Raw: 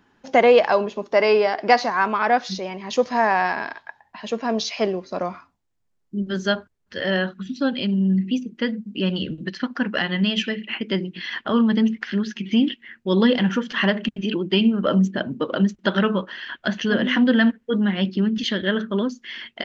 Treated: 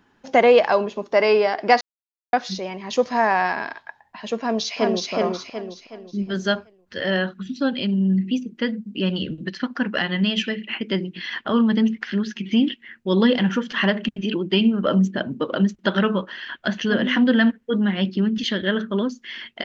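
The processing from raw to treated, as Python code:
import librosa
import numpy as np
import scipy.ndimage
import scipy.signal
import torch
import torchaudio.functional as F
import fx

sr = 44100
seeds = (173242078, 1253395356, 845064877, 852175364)

y = fx.echo_throw(x, sr, start_s=4.39, length_s=0.73, ms=370, feedback_pct=40, wet_db=-1.5)
y = fx.edit(y, sr, fx.silence(start_s=1.81, length_s=0.52), tone=tone)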